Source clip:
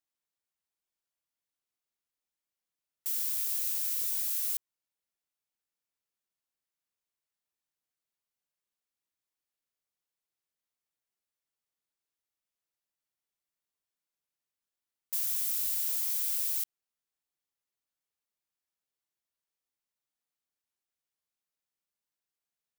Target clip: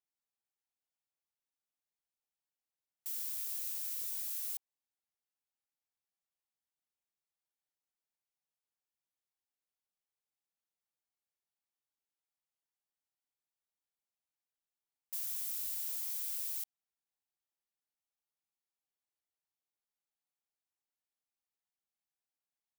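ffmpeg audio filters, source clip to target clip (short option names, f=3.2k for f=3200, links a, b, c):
-af "equalizer=f=800:t=o:w=0.31:g=7.5,volume=-7.5dB"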